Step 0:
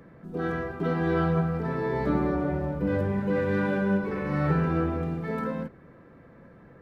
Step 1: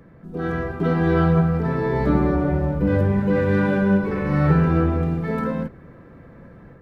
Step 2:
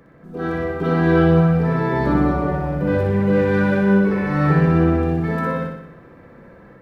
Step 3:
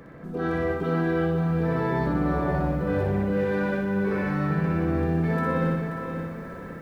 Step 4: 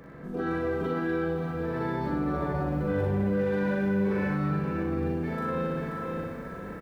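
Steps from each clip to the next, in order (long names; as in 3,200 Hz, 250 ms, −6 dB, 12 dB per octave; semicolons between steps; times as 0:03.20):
low-shelf EQ 120 Hz +8.5 dB; automatic gain control gain up to 5 dB
low-shelf EQ 200 Hz −9.5 dB; on a send: flutter between parallel walls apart 10.4 metres, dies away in 0.78 s; on the sum: level +2 dB
reversed playback; downward compressor 10 to 1, threshold −26 dBFS, peak gain reduction 16 dB; reversed playback; feedback echo at a low word length 532 ms, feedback 35%, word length 10 bits, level −8 dB; level +4 dB
brickwall limiter −20 dBFS, peak gain reduction 6 dB; double-tracking delay 40 ms −3 dB; level −2.5 dB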